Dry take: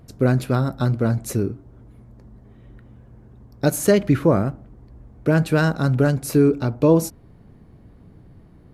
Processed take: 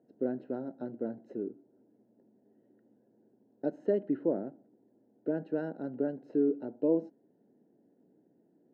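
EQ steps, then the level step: boxcar filter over 38 samples; high-pass 260 Hz 24 dB/octave; distance through air 200 m; -8.5 dB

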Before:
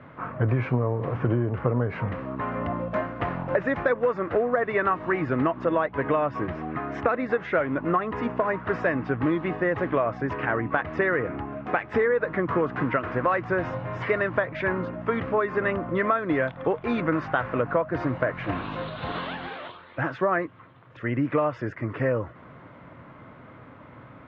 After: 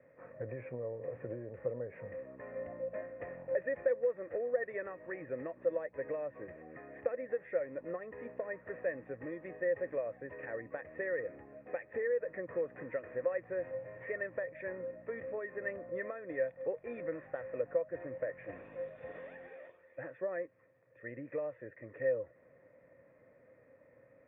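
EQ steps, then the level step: cascade formant filter e; -4.0 dB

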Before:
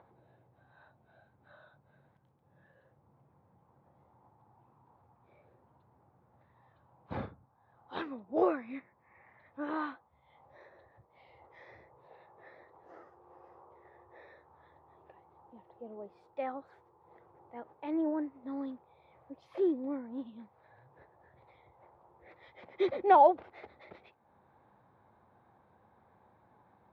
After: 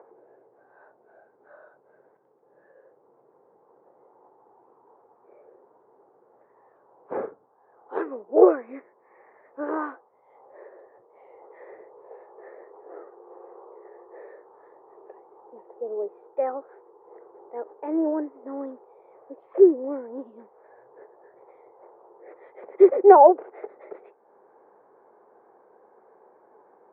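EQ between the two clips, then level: resonant high-pass 420 Hz, resonance Q 4.9; low-pass 1.8 kHz 24 dB/octave; +5.0 dB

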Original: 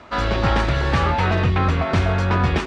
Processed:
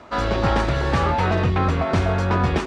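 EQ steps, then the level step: bass shelf 210 Hz -6 dB; peaking EQ 2.6 kHz -6.5 dB 2.6 oct; +3.0 dB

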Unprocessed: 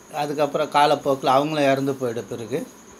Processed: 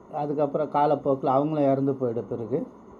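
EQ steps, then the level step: dynamic bell 860 Hz, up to -5 dB, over -28 dBFS, Q 0.84; Savitzky-Golay filter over 65 samples; 0.0 dB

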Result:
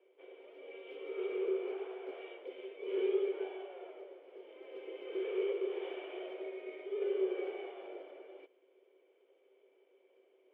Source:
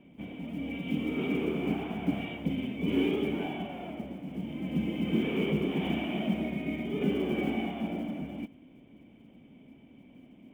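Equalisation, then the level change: rippled Chebyshev high-pass 370 Hz, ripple 6 dB; distance through air 410 m; high-order bell 1.3 kHz -10 dB 2.6 oct; +5.5 dB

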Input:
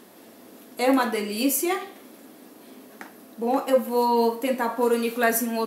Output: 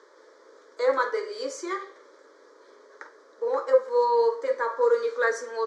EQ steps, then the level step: Chebyshev band-pass 460–6600 Hz, order 3; distance through air 93 m; static phaser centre 730 Hz, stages 6; +2.5 dB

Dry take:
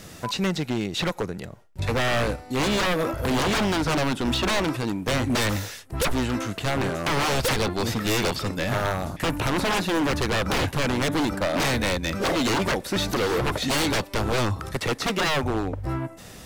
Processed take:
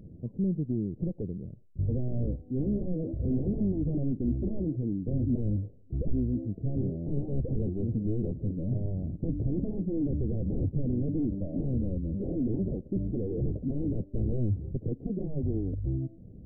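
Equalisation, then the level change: Gaussian low-pass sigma 24 samples; 0.0 dB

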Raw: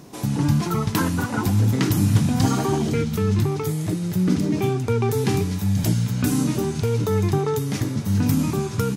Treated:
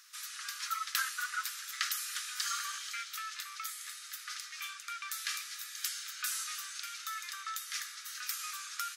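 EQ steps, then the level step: rippled Chebyshev high-pass 1.2 kHz, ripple 3 dB; -2.5 dB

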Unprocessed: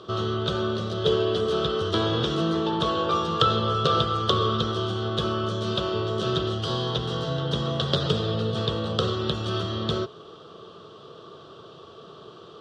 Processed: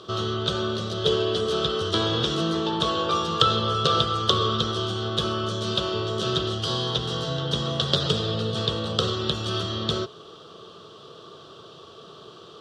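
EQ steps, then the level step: treble shelf 3.5 kHz +10 dB; -1.0 dB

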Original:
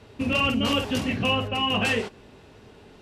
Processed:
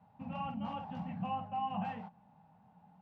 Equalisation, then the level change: two resonant band-passes 380 Hz, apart 2.2 oct; distance through air 70 m; -1.5 dB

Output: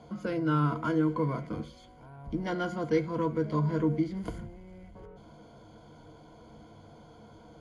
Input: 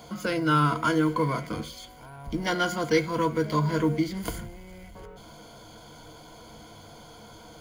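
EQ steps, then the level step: high-pass 260 Hz 6 dB/octave; elliptic low-pass 12 kHz, stop band 40 dB; tilt EQ -4 dB/octave; -6.0 dB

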